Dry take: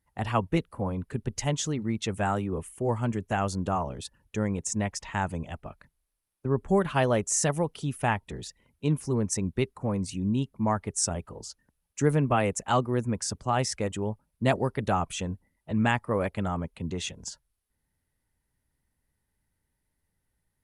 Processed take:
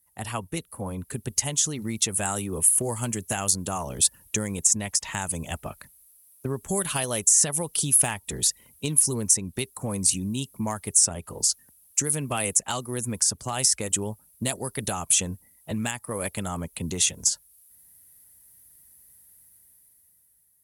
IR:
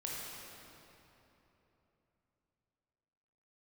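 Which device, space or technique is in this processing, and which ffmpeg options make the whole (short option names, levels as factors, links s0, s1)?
FM broadcast chain: -filter_complex "[0:a]highpass=49,dynaudnorm=f=270:g=9:m=3.76,acrossover=split=2900|6000[s0][s1][s2];[s0]acompressor=threshold=0.0708:ratio=4[s3];[s1]acompressor=threshold=0.0251:ratio=4[s4];[s2]acompressor=threshold=0.02:ratio=4[s5];[s3][s4][s5]amix=inputs=3:normalize=0,aemphasis=mode=production:type=50fm,alimiter=limit=0.237:level=0:latency=1:release=354,asoftclip=type=hard:threshold=0.2,lowpass=f=15000:w=0.5412,lowpass=f=15000:w=1.3066,aemphasis=mode=production:type=50fm,volume=0.668"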